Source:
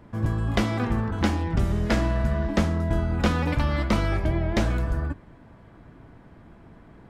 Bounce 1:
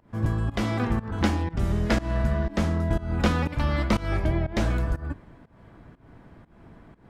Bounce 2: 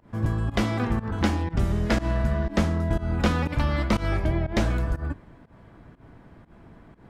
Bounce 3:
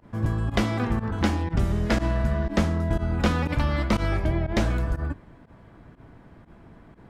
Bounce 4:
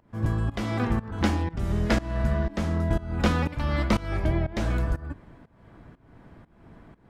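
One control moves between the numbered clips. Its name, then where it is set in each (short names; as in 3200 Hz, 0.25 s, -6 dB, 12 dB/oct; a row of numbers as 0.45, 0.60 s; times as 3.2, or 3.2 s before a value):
pump, release: 236, 138, 75, 376 ms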